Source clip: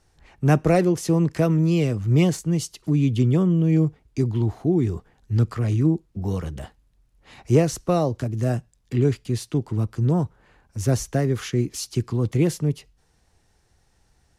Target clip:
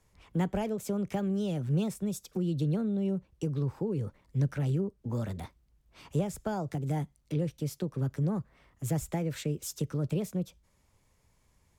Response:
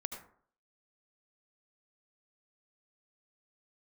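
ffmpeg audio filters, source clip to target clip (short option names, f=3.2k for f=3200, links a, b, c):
-filter_complex "[0:a]asetrate=53802,aresample=44100,acrossover=split=140[a][b];[b]acompressor=threshold=-27dB:ratio=3[c];[a][c]amix=inputs=2:normalize=0,volume=-5.5dB"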